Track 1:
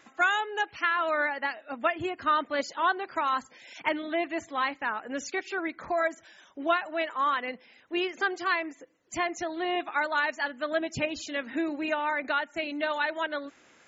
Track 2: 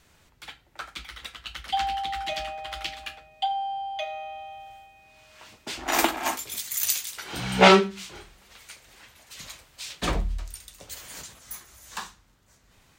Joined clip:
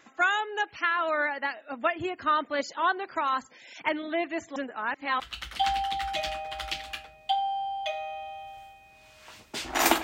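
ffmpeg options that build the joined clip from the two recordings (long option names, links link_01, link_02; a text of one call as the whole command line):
ffmpeg -i cue0.wav -i cue1.wav -filter_complex "[0:a]apad=whole_dur=10.03,atrim=end=10.03,asplit=2[link_01][link_02];[link_01]atrim=end=4.562[link_03];[link_02]atrim=start=4.558:end=5.202,asetpts=PTS-STARTPTS,areverse[link_04];[1:a]atrim=start=1.328:end=6.16[link_05];[link_03][link_04]acrossfade=duration=0.004:curve1=hsin:curve2=hsin[link_06];[link_06][link_05]acrossfade=duration=0.004:curve1=hsin:curve2=hsin" out.wav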